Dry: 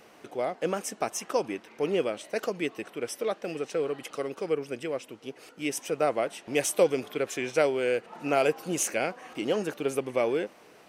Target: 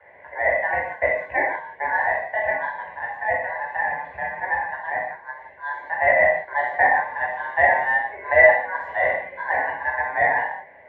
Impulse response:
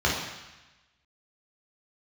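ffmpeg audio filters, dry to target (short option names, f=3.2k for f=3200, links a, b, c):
-filter_complex "[0:a]lowpass=f=720:t=q:w=4.9,aeval=exprs='val(0)*sin(2*PI*1300*n/s)':c=same[a];[1:a]atrim=start_sample=2205,afade=t=out:st=0.24:d=0.01,atrim=end_sample=11025[b];[a][b]afir=irnorm=-1:irlink=0,volume=-11.5dB"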